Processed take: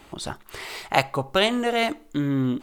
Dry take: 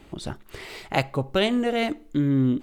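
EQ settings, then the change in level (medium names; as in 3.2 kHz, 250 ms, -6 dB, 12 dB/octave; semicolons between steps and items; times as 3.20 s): peaking EQ 1 kHz +9 dB 1.7 oct; treble shelf 2.9 kHz +11 dB; -3.5 dB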